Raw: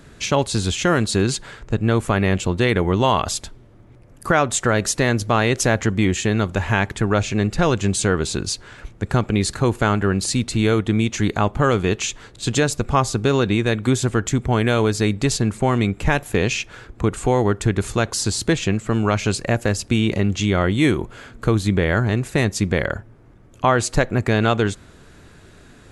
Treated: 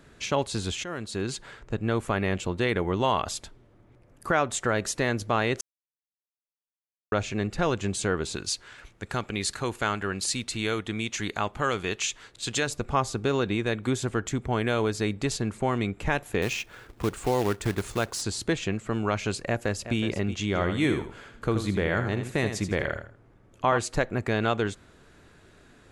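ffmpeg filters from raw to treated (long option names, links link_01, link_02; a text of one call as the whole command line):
ffmpeg -i in.wav -filter_complex "[0:a]asettb=1/sr,asplit=3[link_01][link_02][link_03];[link_01]atrim=end=8.364[link_04];[link_02]atrim=start=8.36:end=12.67,asetpts=PTS-STARTPTS,afade=type=in:duration=0.004:curve=qsin,afade=type=out:start_time=4.306:duration=0.004:curve=qsin,tiltshelf=frequency=1200:gain=-5[link_05];[link_03]atrim=start=12.666[link_06];[link_04][link_05]acrossfade=duration=0.004:curve1=hsin:curve2=qsin[link_07];[link_07][link_06]acrossfade=duration=0.004:curve1=qsin:curve2=hsin,asettb=1/sr,asplit=3[link_08][link_09][link_10];[link_08]atrim=end=16.424[link_11];[link_09]atrim=start=16.42:end=18.22,asetpts=PTS-STARTPTS,afade=type=in:duration=0.004:curve=qsin,afade=type=out:start_time=1.796:duration=0.004:curve=qsin,acrusher=bits=3:mode=log:mix=0:aa=0.000001[link_12];[link_10]atrim=start=18.216[link_13];[link_11][link_12]acrossfade=duration=0.004:curve1=hsin:curve2=qsin[link_14];[link_14][link_13]acrossfade=duration=0.004:curve1=qsin:curve2=hsin,asplit=2[link_15][link_16];[link_16]afade=type=in:start_time=19.45:duration=0.01,afade=type=out:start_time=19.97:duration=0.01,aecho=0:1:370|740:0.266073|0.0266073[link_17];[link_15][link_17]amix=inputs=2:normalize=0,asplit=3[link_18][link_19][link_20];[link_18]afade=type=out:start_time=20.54:duration=0.02[link_21];[link_19]aecho=1:1:80|160|240:0.398|0.0995|0.0249,afade=type=in:start_time=20.54:duration=0.02,afade=type=out:start_time=23.77:duration=0.02[link_22];[link_20]afade=type=in:start_time=23.77:duration=0.02[link_23];[link_21][link_22][link_23]amix=inputs=3:normalize=0,asplit=4[link_24][link_25][link_26][link_27];[link_24]atrim=end=0.84,asetpts=PTS-STARTPTS,afade=type=out:start_time=0.836:duration=0.004:curve=hsin:silence=0.211349[link_28];[link_25]atrim=start=0.84:end=5.61,asetpts=PTS-STARTPTS,afade=type=in:duration=0.64:silence=0.211349,afade=type=out:start_time=4.766:duration=0.004:curve=hsin[link_29];[link_26]atrim=start=5.61:end=7.12,asetpts=PTS-STARTPTS,volume=0[link_30];[link_27]atrim=start=7.12,asetpts=PTS-STARTPTS,afade=type=in:duration=0.004:curve=hsin[link_31];[link_28][link_29][link_30][link_31]concat=n=4:v=0:a=1,bass=frequency=250:gain=-4,treble=frequency=4000:gain=-3,volume=-6.5dB" out.wav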